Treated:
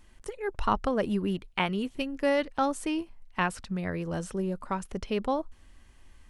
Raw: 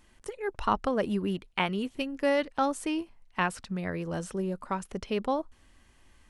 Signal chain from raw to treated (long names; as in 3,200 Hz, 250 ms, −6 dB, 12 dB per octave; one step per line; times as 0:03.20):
low-shelf EQ 79 Hz +8 dB